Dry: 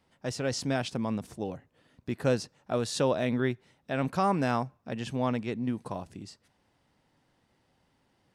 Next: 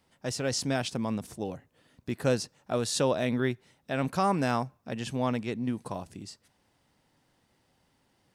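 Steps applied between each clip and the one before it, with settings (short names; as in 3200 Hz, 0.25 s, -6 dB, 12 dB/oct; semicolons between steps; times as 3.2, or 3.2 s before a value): high shelf 5500 Hz +7.5 dB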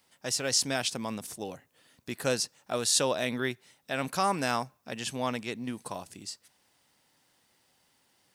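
tilt +2.5 dB/oct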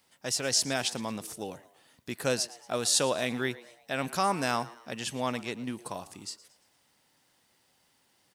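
frequency-shifting echo 0.114 s, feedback 45%, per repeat +110 Hz, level -19 dB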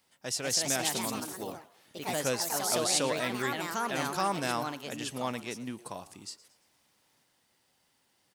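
echoes that change speed 0.238 s, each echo +3 st, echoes 3; gain -3 dB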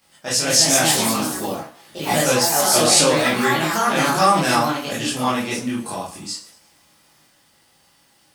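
reverb RT60 0.30 s, pre-delay 13 ms, DRR -6.5 dB; gain +6.5 dB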